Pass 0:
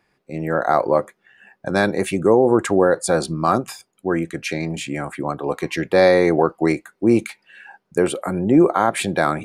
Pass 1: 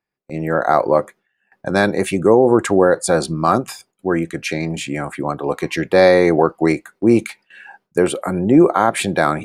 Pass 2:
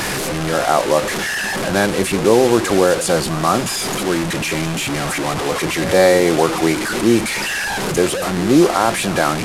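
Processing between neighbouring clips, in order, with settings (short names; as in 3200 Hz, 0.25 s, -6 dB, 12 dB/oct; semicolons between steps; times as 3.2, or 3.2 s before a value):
gate with hold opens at -37 dBFS; gain +2.5 dB
delta modulation 64 kbps, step -14.5 dBFS; pre-echo 0.136 s -14.5 dB; gain -1 dB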